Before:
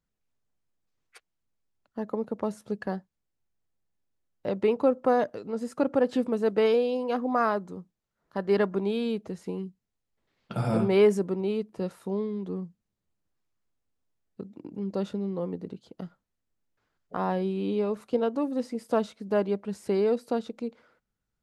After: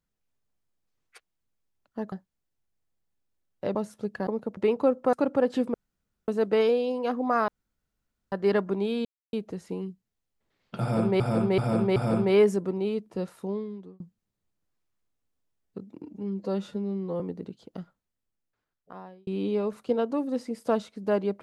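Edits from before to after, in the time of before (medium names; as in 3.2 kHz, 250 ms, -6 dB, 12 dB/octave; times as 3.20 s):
2.12–2.42 s: swap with 2.94–4.57 s
5.13–5.72 s: delete
6.33 s: insert room tone 0.54 s
7.53–8.37 s: room tone
9.10 s: insert silence 0.28 s
10.59–10.97 s: loop, 4 plays
11.87–12.63 s: fade out equal-power
14.66–15.44 s: stretch 1.5×
16.01–17.51 s: fade out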